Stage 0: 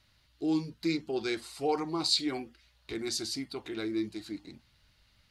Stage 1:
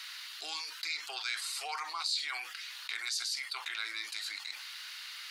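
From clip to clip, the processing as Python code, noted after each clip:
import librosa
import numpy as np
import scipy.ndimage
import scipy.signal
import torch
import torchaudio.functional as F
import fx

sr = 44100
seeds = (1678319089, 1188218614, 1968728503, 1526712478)

y = scipy.signal.sosfilt(scipy.signal.butter(4, 1200.0, 'highpass', fs=sr, output='sos'), x)
y = fx.env_flatten(y, sr, amount_pct=70)
y = y * librosa.db_to_amplitude(-7.5)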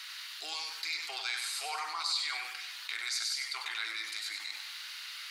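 y = fx.echo_feedback(x, sr, ms=97, feedback_pct=44, wet_db=-6)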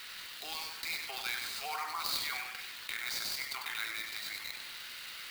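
y = fx.air_absorb(x, sr, metres=58.0)
y = fx.clock_jitter(y, sr, seeds[0], jitter_ms=0.022)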